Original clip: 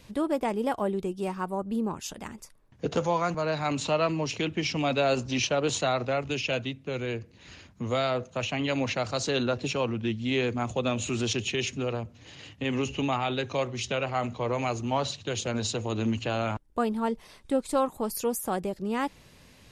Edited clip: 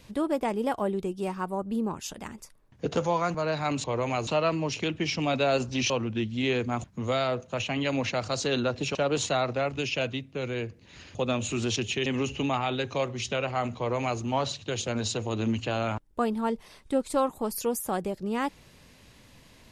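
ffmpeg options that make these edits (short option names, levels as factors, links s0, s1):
-filter_complex "[0:a]asplit=8[s0][s1][s2][s3][s4][s5][s6][s7];[s0]atrim=end=3.842[s8];[s1]atrim=start=14.358:end=14.792[s9];[s2]atrim=start=3.838:end=5.472[s10];[s3]atrim=start=9.778:end=10.722[s11];[s4]atrim=start=7.668:end=9.782[s12];[s5]atrim=start=5.468:end=7.672[s13];[s6]atrim=start=10.718:end=11.632[s14];[s7]atrim=start=12.648[s15];[s8][s9]acrossfade=d=0.004:c1=hsin:c2=hsin[s16];[s16][s10]acrossfade=d=0.004:c1=hsin:c2=hsin[s17];[s17][s11]acrossfade=d=0.004:c1=hsin:c2=hsin[s18];[s18][s12]acrossfade=d=0.004:c1=hsin:c2=hsin[s19];[s19][s13]acrossfade=d=0.004:c1=hsin:c2=hsin[s20];[s20][s14]acrossfade=d=0.004:c1=hsin:c2=hsin[s21];[s21][s15]acrossfade=d=0.004:c1=hsin:c2=hsin"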